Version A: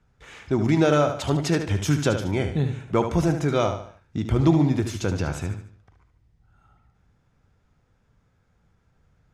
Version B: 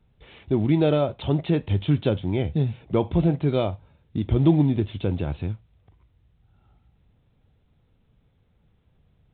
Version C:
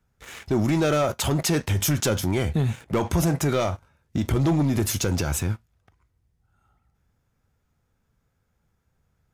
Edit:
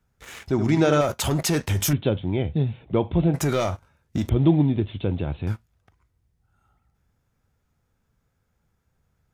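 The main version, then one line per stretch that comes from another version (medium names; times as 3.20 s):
C
0.51–1.01 s: from A
1.93–3.34 s: from B
4.29–5.47 s: from B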